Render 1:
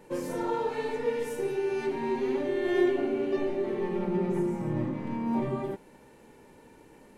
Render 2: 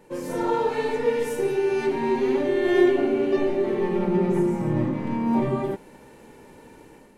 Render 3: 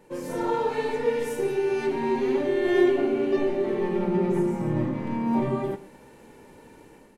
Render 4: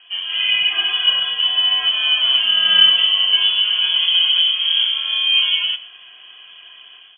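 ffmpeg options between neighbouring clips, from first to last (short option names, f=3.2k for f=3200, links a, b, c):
-af "dynaudnorm=f=120:g=5:m=6.5dB"
-af "aecho=1:1:124:0.133,volume=-2dB"
-af "lowpass=f=2.9k:t=q:w=0.5098,lowpass=f=2.9k:t=q:w=0.6013,lowpass=f=2.9k:t=q:w=0.9,lowpass=f=2.9k:t=q:w=2.563,afreqshift=-3400,volume=8dB"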